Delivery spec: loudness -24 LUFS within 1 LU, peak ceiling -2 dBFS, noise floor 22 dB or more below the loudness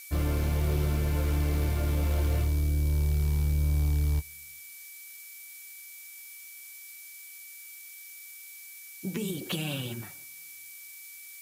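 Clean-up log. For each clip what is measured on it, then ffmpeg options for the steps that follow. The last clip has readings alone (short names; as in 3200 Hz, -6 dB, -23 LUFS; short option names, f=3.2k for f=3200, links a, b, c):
steady tone 2300 Hz; tone level -50 dBFS; noise floor -47 dBFS; noise floor target -51 dBFS; loudness -29.0 LUFS; peak -18.0 dBFS; loudness target -24.0 LUFS
-> -af "bandreject=f=2.3k:w=30"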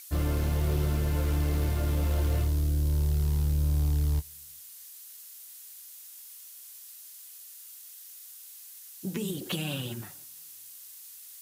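steady tone none; noise floor -48 dBFS; noise floor target -51 dBFS
-> -af "afftdn=nr=6:nf=-48"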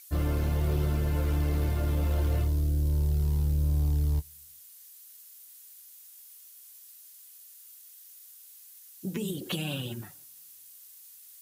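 noise floor -52 dBFS; loudness -29.0 LUFS; peak -18.5 dBFS; loudness target -24.0 LUFS
-> -af "volume=5dB"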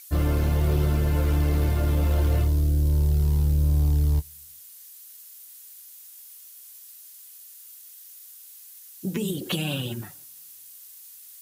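loudness -24.0 LUFS; peak -13.5 dBFS; noise floor -47 dBFS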